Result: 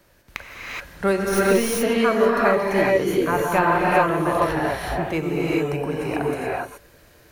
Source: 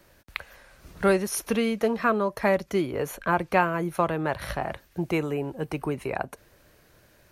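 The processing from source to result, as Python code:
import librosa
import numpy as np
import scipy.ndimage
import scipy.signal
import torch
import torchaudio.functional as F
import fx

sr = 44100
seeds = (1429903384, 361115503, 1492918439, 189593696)

y = fx.tracing_dist(x, sr, depth_ms=0.038)
y = fx.rev_gated(y, sr, seeds[0], gate_ms=450, shape='rising', drr_db=-5.0)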